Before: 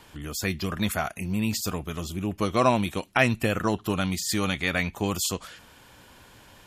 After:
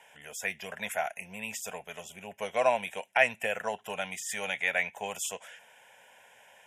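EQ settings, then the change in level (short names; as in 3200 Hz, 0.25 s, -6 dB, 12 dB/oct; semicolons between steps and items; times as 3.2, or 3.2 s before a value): HPF 450 Hz 12 dB/oct; LPF 9300 Hz 12 dB/oct; fixed phaser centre 1200 Hz, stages 6; 0.0 dB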